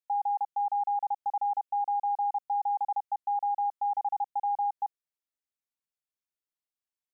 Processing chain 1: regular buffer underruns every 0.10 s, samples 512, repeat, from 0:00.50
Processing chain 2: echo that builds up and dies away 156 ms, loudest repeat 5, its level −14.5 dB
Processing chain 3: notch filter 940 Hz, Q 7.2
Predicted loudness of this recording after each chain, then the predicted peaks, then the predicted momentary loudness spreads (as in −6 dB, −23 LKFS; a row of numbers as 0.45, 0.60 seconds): −30.5, −32.0, −31.5 LKFS; −24.5, −22.0, −25.0 dBFS; 3, 13, 3 LU